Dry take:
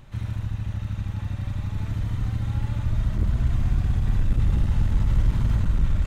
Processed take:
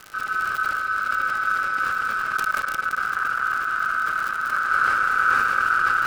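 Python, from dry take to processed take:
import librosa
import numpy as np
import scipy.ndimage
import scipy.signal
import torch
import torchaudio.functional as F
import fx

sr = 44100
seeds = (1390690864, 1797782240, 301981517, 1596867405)

y = fx.reverse_delay_fb(x, sr, ms=151, feedback_pct=50, wet_db=-1.5)
y = fx.level_steps(y, sr, step_db=21, at=(2.36, 4.65))
y = scipy.signal.sosfilt(scipy.signal.butter(2, 90.0, 'highpass', fs=sr, output='sos'), y)
y = fx.peak_eq(y, sr, hz=2000.0, db=-8.0, octaves=0.21)
y = fx.notch(y, sr, hz=660.0, q=20.0)
y = y + 10.0 ** (-17.0 / 20.0) * np.pad(y, (int(209 * sr / 1000.0), 0))[:len(y)]
y = y * np.sin(2.0 * np.pi * 1400.0 * np.arange(len(y)) / sr)
y = fx.dmg_crackle(y, sr, seeds[0], per_s=110.0, level_db=-34.0)
y = fx.sustainer(y, sr, db_per_s=20.0)
y = y * 10.0 ** (4.5 / 20.0)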